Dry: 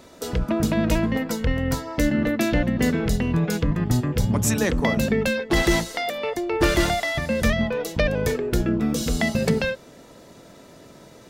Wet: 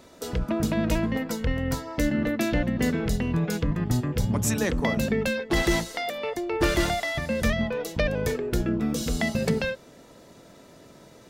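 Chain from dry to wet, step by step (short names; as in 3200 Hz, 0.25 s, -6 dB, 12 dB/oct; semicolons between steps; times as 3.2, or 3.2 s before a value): gain -3.5 dB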